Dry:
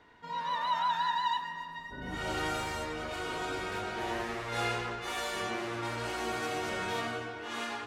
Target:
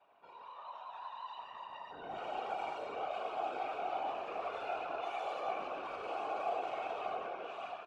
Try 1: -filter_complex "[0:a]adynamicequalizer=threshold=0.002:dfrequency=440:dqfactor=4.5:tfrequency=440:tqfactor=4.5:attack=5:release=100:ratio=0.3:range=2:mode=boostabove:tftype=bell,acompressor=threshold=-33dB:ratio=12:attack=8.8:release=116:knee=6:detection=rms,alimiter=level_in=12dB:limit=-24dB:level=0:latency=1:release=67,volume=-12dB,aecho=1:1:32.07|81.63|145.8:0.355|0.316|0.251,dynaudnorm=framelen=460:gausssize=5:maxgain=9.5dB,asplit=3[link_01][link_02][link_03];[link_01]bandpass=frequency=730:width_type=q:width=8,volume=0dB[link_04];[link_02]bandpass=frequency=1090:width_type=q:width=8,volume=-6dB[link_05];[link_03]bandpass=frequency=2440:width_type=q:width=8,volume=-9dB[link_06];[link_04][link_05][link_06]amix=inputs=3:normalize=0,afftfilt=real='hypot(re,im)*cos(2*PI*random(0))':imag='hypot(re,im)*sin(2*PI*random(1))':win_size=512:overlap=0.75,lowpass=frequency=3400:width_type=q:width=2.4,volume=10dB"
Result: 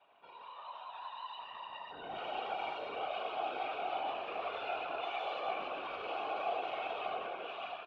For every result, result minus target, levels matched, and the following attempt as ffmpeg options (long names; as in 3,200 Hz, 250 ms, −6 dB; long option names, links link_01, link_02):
downward compressor: peak gain reduction +9 dB; 4,000 Hz band +6.0 dB
-filter_complex "[0:a]adynamicequalizer=threshold=0.002:dfrequency=440:dqfactor=4.5:tfrequency=440:tqfactor=4.5:attack=5:release=100:ratio=0.3:range=2:mode=boostabove:tftype=bell,alimiter=level_in=12dB:limit=-24dB:level=0:latency=1:release=67,volume=-12dB,aecho=1:1:32.07|81.63|145.8:0.355|0.316|0.251,dynaudnorm=framelen=460:gausssize=5:maxgain=9.5dB,asplit=3[link_01][link_02][link_03];[link_01]bandpass=frequency=730:width_type=q:width=8,volume=0dB[link_04];[link_02]bandpass=frequency=1090:width_type=q:width=8,volume=-6dB[link_05];[link_03]bandpass=frequency=2440:width_type=q:width=8,volume=-9dB[link_06];[link_04][link_05][link_06]amix=inputs=3:normalize=0,afftfilt=real='hypot(re,im)*cos(2*PI*random(0))':imag='hypot(re,im)*sin(2*PI*random(1))':win_size=512:overlap=0.75,lowpass=frequency=3400:width_type=q:width=2.4,volume=10dB"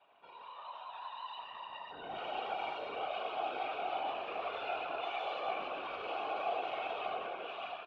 4,000 Hz band +6.0 dB
-filter_complex "[0:a]adynamicequalizer=threshold=0.002:dfrequency=440:dqfactor=4.5:tfrequency=440:tqfactor=4.5:attack=5:release=100:ratio=0.3:range=2:mode=boostabove:tftype=bell,alimiter=level_in=12dB:limit=-24dB:level=0:latency=1:release=67,volume=-12dB,aecho=1:1:32.07|81.63|145.8:0.355|0.316|0.251,dynaudnorm=framelen=460:gausssize=5:maxgain=9.5dB,asplit=3[link_01][link_02][link_03];[link_01]bandpass=frequency=730:width_type=q:width=8,volume=0dB[link_04];[link_02]bandpass=frequency=1090:width_type=q:width=8,volume=-6dB[link_05];[link_03]bandpass=frequency=2440:width_type=q:width=8,volume=-9dB[link_06];[link_04][link_05][link_06]amix=inputs=3:normalize=0,afftfilt=real='hypot(re,im)*cos(2*PI*random(0))':imag='hypot(re,im)*sin(2*PI*random(1))':win_size=512:overlap=0.75,volume=10dB"